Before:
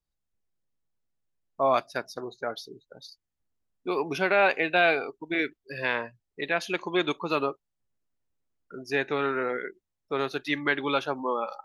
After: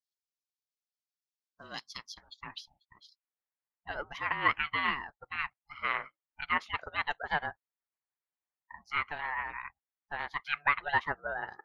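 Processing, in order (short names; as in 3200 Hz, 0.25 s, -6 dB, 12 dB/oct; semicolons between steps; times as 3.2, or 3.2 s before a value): band-pass sweep 5000 Hz -> 1400 Hz, 1.78–3.33; harmonic-percussive split harmonic -14 dB; ring modulator 440 Hz; gain +7 dB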